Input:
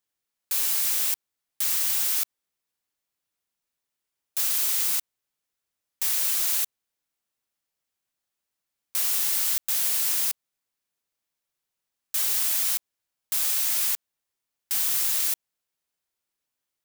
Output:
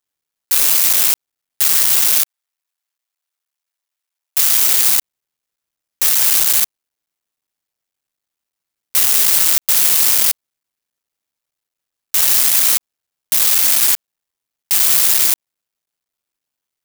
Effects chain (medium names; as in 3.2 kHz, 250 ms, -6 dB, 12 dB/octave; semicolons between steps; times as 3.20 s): cycle switcher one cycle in 3, muted; 2.20–4.65 s: high-pass 700 Hz; waveshaping leveller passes 2; trim +7.5 dB